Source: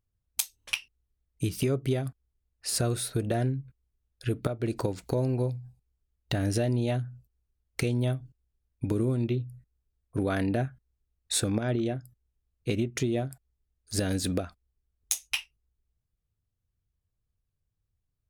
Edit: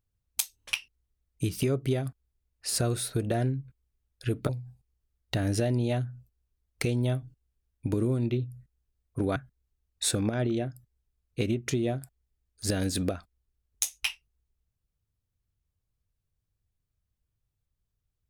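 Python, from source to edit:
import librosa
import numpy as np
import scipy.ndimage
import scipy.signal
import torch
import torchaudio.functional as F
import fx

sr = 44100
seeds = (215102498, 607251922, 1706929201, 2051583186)

y = fx.edit(x, sr, fx.cut(start_s=4.49, length_s=0.98),
    fx.cut(start_s=10.34, length_s=0.31), tone=tone)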